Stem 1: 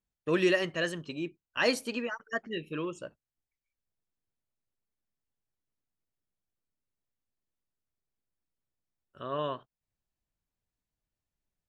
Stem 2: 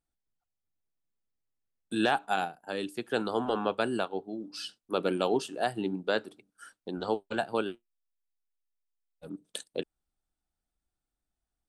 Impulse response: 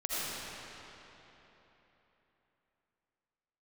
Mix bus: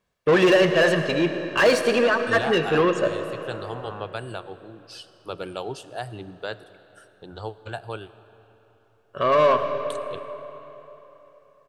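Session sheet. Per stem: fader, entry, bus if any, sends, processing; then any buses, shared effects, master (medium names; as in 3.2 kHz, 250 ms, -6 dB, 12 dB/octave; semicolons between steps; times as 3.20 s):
+2.0 dB, 0.00 s, send -13 dB, bass shelf 290 Hz +11.5 dB; comb 1.8 ms, depth 51%; overdrive pedal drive 25 dB, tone 1.5 kHz, clips at -12 dBFS
-3.0 dB, 0.35 s, send -21.5 dB, expander -50 dBFS; resonant low shelf 150 Hz +14 dB, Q 3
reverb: on, RT60 3.6 s, pre-delay 40 ms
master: bass shelf 97 Hz -11 dB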